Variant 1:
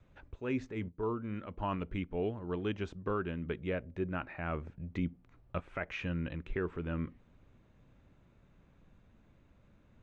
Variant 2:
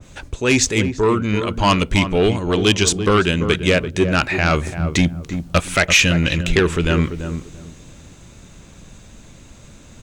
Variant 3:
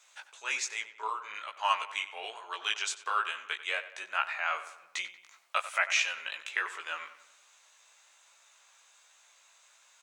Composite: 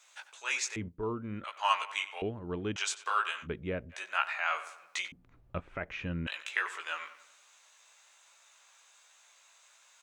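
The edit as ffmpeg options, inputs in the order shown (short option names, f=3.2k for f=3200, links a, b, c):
-filter_complex "[0:a]asplit=4[a][b][c][d];[2:a]asplit=5[e][f][g][h][i];[e]atrim=end=0.762[j];[a]atrim=start=0.758:end=1.442[k];[f]atrim=start=1.438:end=2.222[l];[b]atrim=start=2.218:end=2.762[m];[g]atrim=start=2.758:end=3.48[n];[c]atrim=start=3.42:end=3.95[o];[h]atrim=start=3.89:end=5.122[p];[d]atrim=start=5.118:end=6.272[q];[i]atrim=start=6.268[r];[j][k]acrossfade=d=0.004:c1=hsin:c2=hsin[s];[s][l]acrossfade=d=0.004:c1=hsin:c2=hsin[t];[t][m]acrossfade=d=0.004:c1=hsin:c2=hsin[u];[u][n]acrossfade=d=0.004:c1=hsin:c2=hsin[v];[v][o]acrossfade=d=0.06:c1=tri:c2=tri[w];[w][p]acrossfade=d=0.06:c1=tri:c2=tri[x];[x][q]acrossfade=d=0.004:c1=hsin:c2=hsin[y];[y][r]acrossfade=d=0.004:c1=hsin:c2=hsin"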